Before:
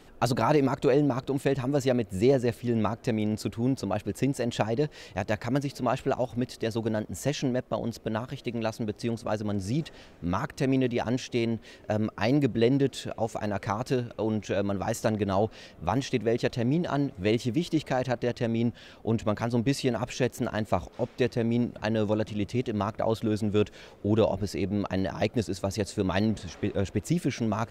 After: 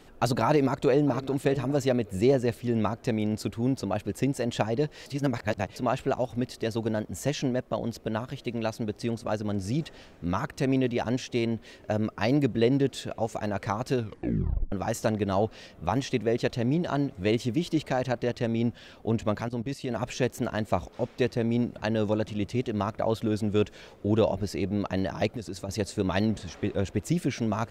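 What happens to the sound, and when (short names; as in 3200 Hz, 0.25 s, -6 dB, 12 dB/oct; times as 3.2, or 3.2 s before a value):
0.47–1.31 echo throw 0.6 s, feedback 20%, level -16 dB
5.06–5.76 reverse
13.97 tape stop 0.75 s
19.41–19.96 level quantiser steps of 15 dB
25.29–25.69 compressor 4:1, threshold -31 dBFS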